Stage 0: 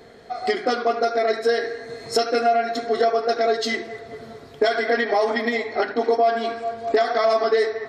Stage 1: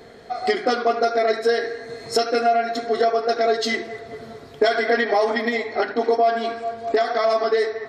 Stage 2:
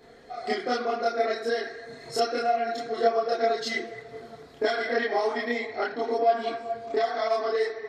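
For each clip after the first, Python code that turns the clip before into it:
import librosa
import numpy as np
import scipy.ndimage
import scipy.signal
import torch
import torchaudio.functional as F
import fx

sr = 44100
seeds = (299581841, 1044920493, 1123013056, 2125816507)

y1 = fx.rider(x, sr, range_db=3, speed_s=2.0)
y2 = fx.chorus_voices(y1, sr, voices=6, hz=0.64, base_ms=29, depth_ms=4.4, mix_pct=60)
y2 = y2 * 10.0 ** (-3.5 / 20.0)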